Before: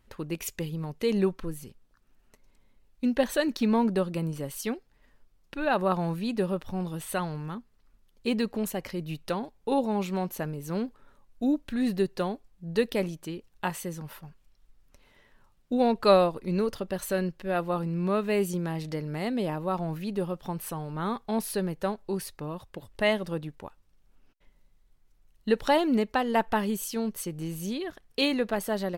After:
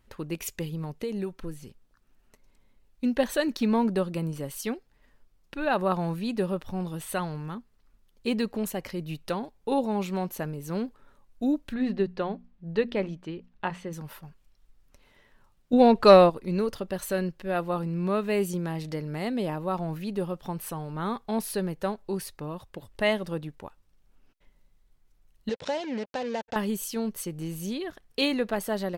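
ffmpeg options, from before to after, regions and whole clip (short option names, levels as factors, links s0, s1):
-filter_complex "[0:a]asettb=1/sr,asplit=3[s0][s1][s2];[s0]atrim=end=1.014[s3];[s1]atrim=start=1.01:end=1.64,asetpts=PTS-STARTPTS,afade=t=in:d=0.004:c=qsin,afade=t=out:st=0.626:d=0.004:c=qsin,bandreject=f=1100:w=9.8,acrossover=split=1300|7400[s4][s5][s6];[s4]acompressor=threshold=0.0316:ratio=4[s7];[s5]acompressor=threshold=0.00355:ratio=4[s8];[s6]acompressor=threshold=0.00112:ratio=4[s9];[s7][s8][s9]amix=inputs=3:normalize=0[s10];[s2]atrim=start=1.636[s11];[s3][s10]acrossfade=d=0.004:c1=hsin:c2=qsin[s12];[s12][s11]acrossfade=d=0.004:c1=qsin:c2=hsin,asettb=1/sr,asplit=3[s13][s14][s15];[s13]atrim=end=11.744[s16];[s14]atrim=start=11.74:end=13.93,asetpts=PTS-STARTPTS,afade=t=in:d=0.004:c=qsin,afade=t=out:st=2.186:d=0.004:c=qsin,lowpass=3200,bandreject=f=60:t=h:w=6,bandreject=f=120:t=h:w=6,bandreject=f=180:t=h:w=6,bandreject=f=240:t=h:w=6[s17];[s15]atrim=start=13.926[s18];[s16][s17]acrossfade=d=0.004:c1=hsin:c2=qsin[s19];[s19][s18]acrossfade=d=0.004:c1=qsin:c2=hsin,asettb=1/sr,asplit=3[s20][s21][s22];[s20]atrim=end=15.734[s23];[s21]atrim=start=15.73:end=16.3,asetpts=PTS-STARTPTS,afade=t=in:d=0.004:c=qsin,afade=t=out:st=0.566:d=0.004:c=qsin,highshelf=f=8200:g=-8.5,acontrast=60[s24];[s22]atrim=start=16.296[s25];[s23][s24]acrossfade=d=0.004:c1=hsin:c2=qsin[s26];[s26][s25]acrossfade=d=0.004:c1=qsin:c2=hsin,asettb=1/sr,asplit=3[s27][s28][s29];[s27]atrim=end=25.494[s30];[s28]atrim=start=25.49:end=26.56,asetpts=PTS-STARTPTS,afade=t=in:d=0.004:c=qsin,afade=t=out:st=1.066:d=0.004:c=qsin,acompressor=threshold=0.0251:ratio=2.5:attack=3.2:release=140:knee=1:detection=peak,acrusher=bits=5:mix=0:aa=0.5,highpass=110,equalizer=f=350:t=q:w=4:g=-6,equalizer=f=520:t=q:w=4:g=8,equalizer=f=1200:t=q:w=4:g=-8,lowpass=f=6700:w=0.5412,lowpass=f=6700:w=1.3066[s31];[s29]atrim=start=26.556[s32];[s30][s31]acrossfade=d=0.004:c1=hsin:c2=qsin[s33];[s33][s32]acrossfade=d=0.004:c1=qsin:c2=hsin"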